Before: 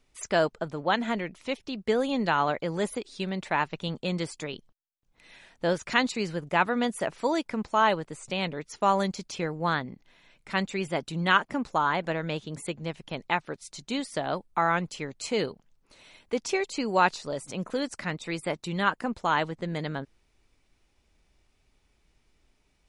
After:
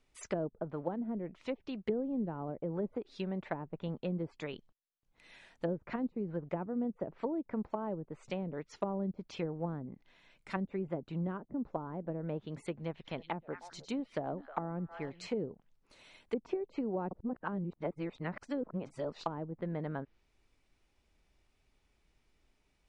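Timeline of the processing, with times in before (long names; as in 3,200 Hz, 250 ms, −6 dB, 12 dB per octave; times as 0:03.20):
0:12.74–0:15.27: echo through a band-pass that steps 104 ms, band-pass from 4,300 Hz, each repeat −1.4 octaves, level −9.5 dB
0:17.11–0:19.26: reverse
whole clip: treble cut that deepens with the level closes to 370 Hz, closed at −24.5 dBFS; bass and treble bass −1 dB, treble −3 dB; level −4.5 dB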